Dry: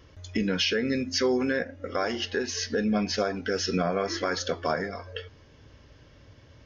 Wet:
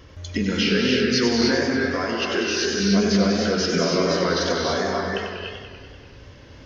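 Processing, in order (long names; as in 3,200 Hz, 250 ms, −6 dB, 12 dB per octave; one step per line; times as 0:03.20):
pitch shifter swept by a sawtooth −1.5 semitones, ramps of 1,487 ms
in parallel at −1 dB: downward compressor, threshold −36 dBFS, peak gain reduction 13.5 dB
on the sum: reverb whose tail is shaped and stops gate 330 ms rising, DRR 0 dB
feedback echo with a swinging delay time 97 ms, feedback 69%, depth 120 cents, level −7 dB
level +1.5 dB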